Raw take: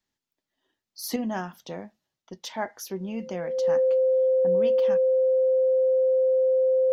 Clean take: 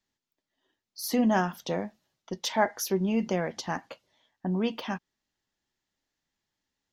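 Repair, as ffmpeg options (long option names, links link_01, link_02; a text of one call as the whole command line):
ffmpeg -i in.wav -af "bandreject=frequency=520:width=30,asetnsamples=nb_out_samples=441:pad=0,asendcmd='1.16 volume volume 6dB',volume=0dB" out.wav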